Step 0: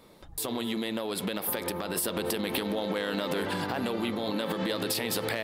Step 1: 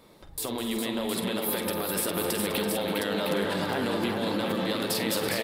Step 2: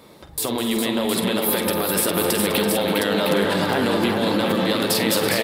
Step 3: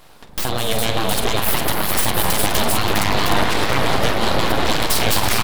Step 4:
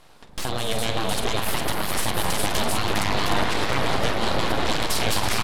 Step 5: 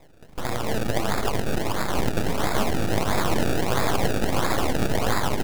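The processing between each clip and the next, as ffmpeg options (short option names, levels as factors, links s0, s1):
-af "aecho=1:1:48|204|266|333|408|713:0.316|0.237|0.178|0.266|0.562|0.501"
-af "highpass=59,volume=2.51"
-af "aeval=exprs='abs(val(0))':c=same,aeval=exprs='0.631*(cos(1*acos(clip(val(0)/0.631,-1,1)))-cos(1*PI/2))+0.0562*(cos(6*acos(clip(val(0)/0.631,-1,1)))-cos(6*PI/2))':c=same,volume=1.33"
-af "lowpass=11000,volume=0.562"
-af "acrusher=samples=29:mix=1:aa=0.000001:lfo=1:lforange=29:lforate=1.5"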